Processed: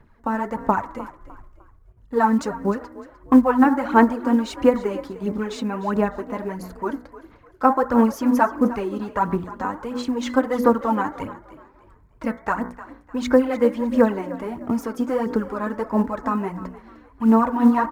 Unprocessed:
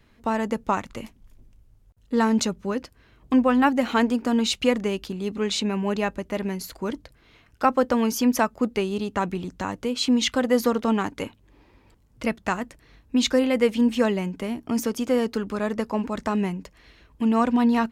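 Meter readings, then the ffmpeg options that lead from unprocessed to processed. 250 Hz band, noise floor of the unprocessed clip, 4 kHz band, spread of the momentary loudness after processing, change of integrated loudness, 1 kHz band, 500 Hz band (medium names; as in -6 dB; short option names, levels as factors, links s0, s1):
+2.5 dB, -58 dBFS, -11.0 dB, 13 LU, +2.5 dB, +5.0 dB, +2.5 dB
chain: -filter_complex "[0:a]bandreject=f=61.16:t=h:w=4,bandreject=f=122.32:t=h:w=4,bandreject=f=183.48:t=h:w=4,bandreject=f=244.64:t=h:w=4,bandreject=f=305.8:t=h:w=4,bandreject=f=366.96:t=h:w=4,bandreject=f=428.12:t=h:w=4,bandreject=f=489.28:t=h:w=4,bandreject=f=550.44:t=h:w=4,bandreject=f=611.6:t=h:w=4,bandreject=f=672.76:t=h:w=4,bandreject=f=733.92:t=h:w=4,bandreject=f=795.08:t=h:w=4,bandreject=f=856.24:t=h:w=4,bandreject=f=917.4:t=h:w=4,bandreject=f=978.56:t=h:w=4,bandreject=f=1039.72:t=h:w=4,bandreject=f=1100.88:t=h:w=4,bandreject=f=1162.04:t=h:w=4,bandreject=f=1223.2:t=h:w=4,bandreject=f=1284.36:t=h:w=4,bandreject=f=1345.52:t=h:w=4,bandreject=f=1406.68:t=h:w=4,bandreject=f=1467.84:t=h:w=4,bandreject=f=1529:t=h:w=4,bandreject=f=1590.16:t=h:w=4,bandreject=f=1651.32:t=h:w=4,bandreject=f=1712.48:t=h:w=4,bandreject=f=1773.64:t=h:w=4,bandreject=f=1834.8:t=h:w=4,bandreject=f=1895.96:t=h:w=4,bandreject=f=1957.12:t=h:w=4,bandreject=f=2018.28:t=h:w=4,bandreject=f=2079.44:t=h:w=4,bandreject=f=2140.6:t=h:w=4,bandreject=f=2201.76:t=h:w=4,aphaser=in_gain=1:out_gain=1:delay=4:decay=0.61:speed=1.5:type=sinusoidal,equalizer=f=940:t=o:w=0.29:g=5.5,acrusher=bits=7:mode=log:mix=0:aa=0.000001,highshelf=f=2100:t=q:w=1.5:g=-10,asplit=4[s0][s1][s2][s3];[s1]adelay=303,afreqshift=47,volume=0.15[s4];[s2]adelay=606,afreqshift=94,volume=0.0479[s5];[s3]adelay=909,afreqshift=141,volume=0.0153[s6];[s0][s4][s5][s6]amix=inputs=4:normalize=0,volume=0.891"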